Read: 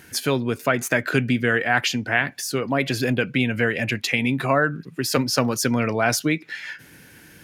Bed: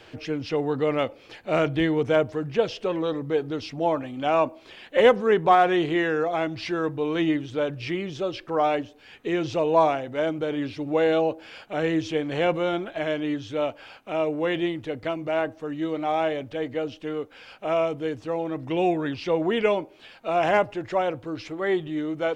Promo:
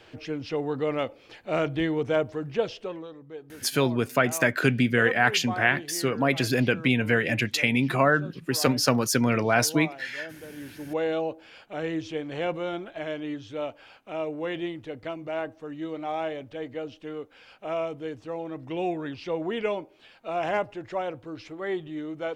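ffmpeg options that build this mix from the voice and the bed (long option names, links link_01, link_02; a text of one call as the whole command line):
ffmpeg -i stem1.wav -i stem2.wav -filter_complex "[0:a]adelay=3500,volume=-1.5dB[link_01];[1:a]volume=7dB,afade=type=out:start_time=2.65:duration=0.44:silence=0.223872,afade=type=in:start_time=10.5:duration=0.44:silence=0.298538[link_02];[link_01][link_02]amix=inputs=2:normalize=0" out.wav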